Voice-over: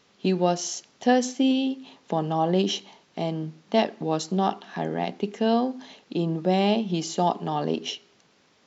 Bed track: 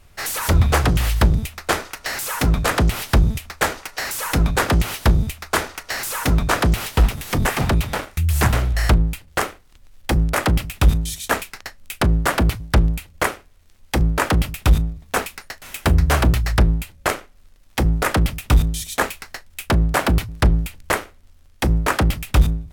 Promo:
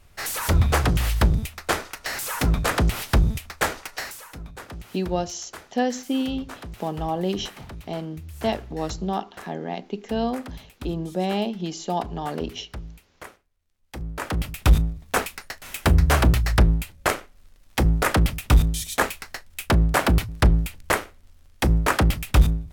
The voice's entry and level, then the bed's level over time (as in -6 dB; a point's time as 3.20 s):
4.70 s, -3.0 dB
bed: 3.97 s -3.5 dB
4.32 s -21 dB
13.76 s -21 dB
14.67 s -1.5 dB